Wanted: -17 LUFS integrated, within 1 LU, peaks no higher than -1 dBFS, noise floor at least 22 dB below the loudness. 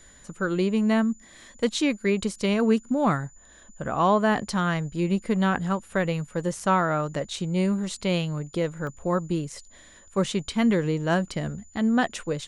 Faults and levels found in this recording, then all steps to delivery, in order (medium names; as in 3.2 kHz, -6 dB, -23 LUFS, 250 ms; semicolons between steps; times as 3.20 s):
dropouts 1; longest dropout 1.1 ms; steady tone 7 kHz; tone level -53 dBFS; loudness -25.5 LUFS; peak level -10.5 dBFS; loudness target -17.0 LUFS
-> interpolate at 8.87 s, 1.1 ms; band-stop 7 kHz, Q 30; trim +8.5 dB